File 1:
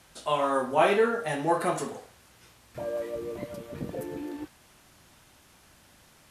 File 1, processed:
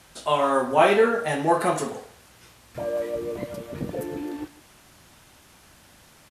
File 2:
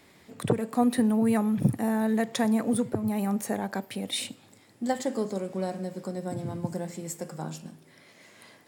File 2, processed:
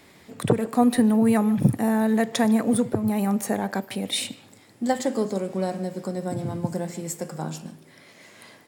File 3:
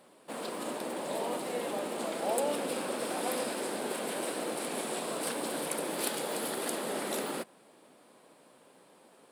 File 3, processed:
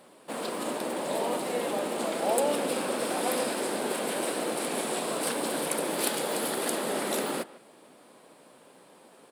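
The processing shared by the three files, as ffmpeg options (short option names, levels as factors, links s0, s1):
-filter_complex "[0:a]asplit=2[s0][s1];[s1]adelay=150,highpass=300,lowpass=3400,asoftclip=type=hard:threshold=0.126,volume=0.126[s2];[s0][s2]amix=inputs=2:normalize=0,volume=1.68"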